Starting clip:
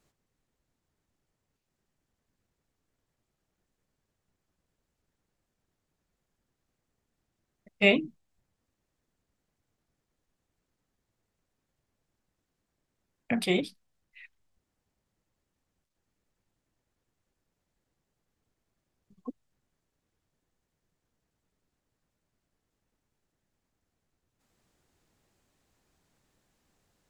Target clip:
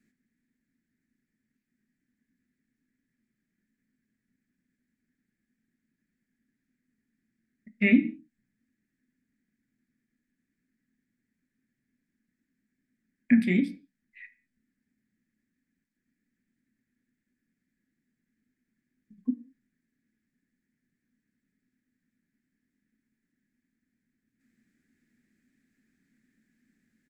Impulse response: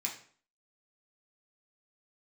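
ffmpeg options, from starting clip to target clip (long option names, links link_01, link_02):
-filter_complex "[0:a]asplit=2[link_01][link_02];[link_02]bass=frequency=250:gain=6,treble=frequency=4000:gain=-9[link_03];[1:a]atrim=start_sample=2205,afade=type=out:start_time=0.27:duration=0.01,atrim=end_sample=12348[link_04];[link_03][link_04]afir=irnorm=-1:irlink=0,volume=-7.5dB[link_05];[link_01][link_05]amix=inputs=2:normalize=0,acrossover=split=2600[link_06][link_07];[link_07]acompressor=threshold=-36dB:ratio=4:attack=1:release=60[link_08];[link_06][link_08]amix=inputs=2:normalize=0,firequalizer=gain_entry='entry(150,0);entry(250,14);entry(360,-3);entry(590,-13);entry(1000,-20);entry(1700,9);entry(2900,-7);entry(8700,-5)':delay=0.05:min_phase=1,volume=-3.5dB"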